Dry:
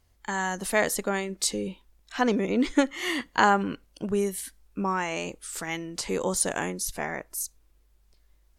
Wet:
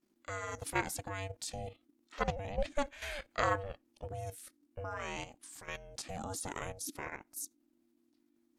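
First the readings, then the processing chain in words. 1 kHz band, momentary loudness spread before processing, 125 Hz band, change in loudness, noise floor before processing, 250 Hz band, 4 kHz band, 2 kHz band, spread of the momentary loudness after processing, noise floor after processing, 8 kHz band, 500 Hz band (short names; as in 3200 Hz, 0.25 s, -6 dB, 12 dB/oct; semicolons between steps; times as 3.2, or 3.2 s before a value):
-11.0 dB, 11 LU, -5.5 dB, -12.0 dB, -64 dBFS, -18.5 dB, -12.0 dB, -11.5 dB, 12 LU, -75 dBFS, -13.0 dB, -11.0 dB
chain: level quantiser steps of 11 dB; ring modulator 290 Hz; gain -4.5 dB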